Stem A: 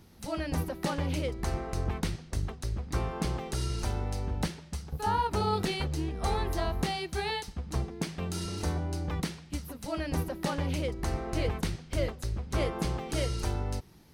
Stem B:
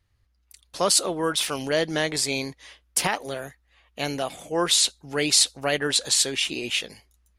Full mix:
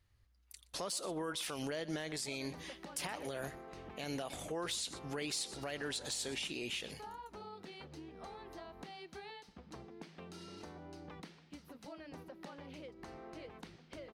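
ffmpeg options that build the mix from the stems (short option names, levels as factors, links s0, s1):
-filter_complex "[0:a]acrossover=split=170 5300:gain=0.141 1 0.251[s0][s1][s2];[s0][s1][s2]amix=inputs=3:normalize=0,acompressor=threshold=0.0112:ratio=6,adelay=2000,volume=0.398[s3];[1:a]acompressor=threshold=0.0316:ratio=2,volume=0.668,asplit=2[s4][s5];[s5]volume=0.0841,aecho=0:1:122:1[s6];[s3][s4][s6]amix=inputs=3:normalize=0,volume=11.9,asoftclip=hard,volume=0.0841,alimiter=level_in=2.11:limit=0.0631:level=0:latency=1:release=68,volume=0.473"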